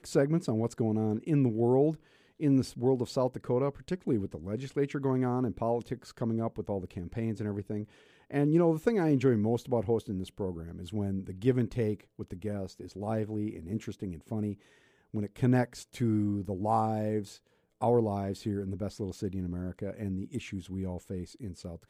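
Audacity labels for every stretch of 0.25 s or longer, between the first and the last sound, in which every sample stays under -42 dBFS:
1.950000	2.400000	silence
7.840000	8.310000	silence
14.540000	15.140000	silence
17.330000	17.810000	silence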